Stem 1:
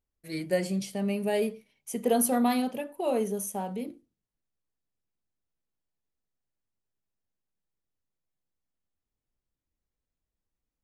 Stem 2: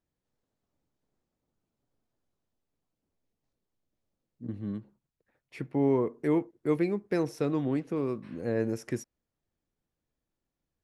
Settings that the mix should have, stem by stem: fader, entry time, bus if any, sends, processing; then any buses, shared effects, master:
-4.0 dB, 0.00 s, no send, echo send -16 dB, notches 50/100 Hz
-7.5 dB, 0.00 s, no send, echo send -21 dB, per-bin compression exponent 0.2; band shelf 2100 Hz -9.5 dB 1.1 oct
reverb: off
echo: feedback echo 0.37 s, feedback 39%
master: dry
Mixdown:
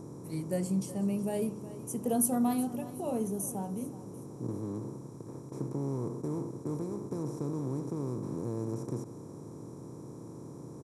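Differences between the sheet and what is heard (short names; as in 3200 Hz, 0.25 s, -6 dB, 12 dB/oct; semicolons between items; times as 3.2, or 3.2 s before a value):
stem 2 -7.5 dB -> -13.5 dB; master: extra graphic EQ 125/500/2000/4000/8000 Hz +11/-4/-10/-9/+6 dB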